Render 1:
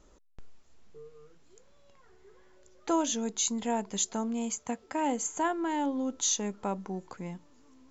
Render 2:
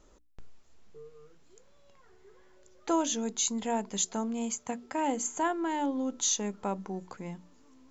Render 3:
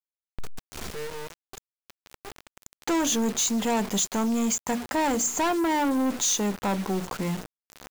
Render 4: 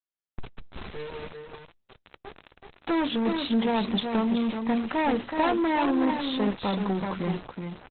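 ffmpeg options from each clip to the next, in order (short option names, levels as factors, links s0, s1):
-af "bandreject=f=60:t=h:w=6,bandreject=f=120:t=h:w=6,bandreject=f=180:t=h:w=6,bandreject=f=240:t=h:w=6,bandreject=f=300:t=h:w=6"
-filter_complex "[0:a]asplit=2[s0][s1];[s1]alimiter=limit=0.0631:level=0:latency=1:release=490,volume=1.41[s2];[s0][s2]amix=inputs=2:normalize=0,acrusher=bits=6:mix=0:aa=0.000001,asoftclip=type=tanh:threshold=0.0398,volume=2.11"
-af "aecho=1:1:378:0.531,acrusher=bits=8:dc=4:mix=0:aa=0.000001" -ar 48000 -c:a libopus -b:a 8k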